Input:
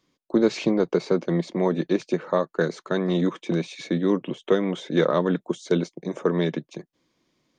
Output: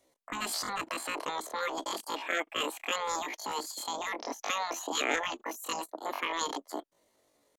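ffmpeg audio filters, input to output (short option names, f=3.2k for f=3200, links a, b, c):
-af "afftfilt=real='re*lt(hypot(re,im),0.251)':imag='im*lt(hypot(re,im),0.251)':win_size=1024:overlap=0.75,asetrate=83250,aresample=44100,atempo=0.529732"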